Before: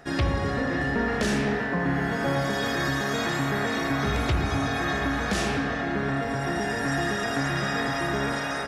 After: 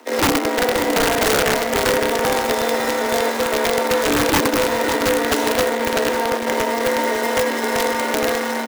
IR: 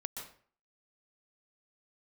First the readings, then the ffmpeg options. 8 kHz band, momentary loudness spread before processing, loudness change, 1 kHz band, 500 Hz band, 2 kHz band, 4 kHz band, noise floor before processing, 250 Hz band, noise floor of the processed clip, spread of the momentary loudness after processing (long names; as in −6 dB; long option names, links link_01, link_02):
+14.0 dB, 2 LU, +7.5 dB, +9.0 dB, +11.5 dB, +5.5 dB, +9.5 dB, −29 dBFS, +4.0 dB, −23 dBFS, 3 LU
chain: -af "equalizer=frequency=130:width_type=o:width=0.46:gain=-12,aecho=1:1:4.2:0.52,acrusher=bits=5:dc=4:mix=0:aa=0.000001,afreqshift=230,tiltshelf=frequency=970:gain=5.5,aeval=exprs='(mod(5.62*val(0)+1,2)-1)/5.62':channel_layout=same,aecho=1:1:552|1104|1656:0.282|0.0874|0.0271,volume=4.5dB"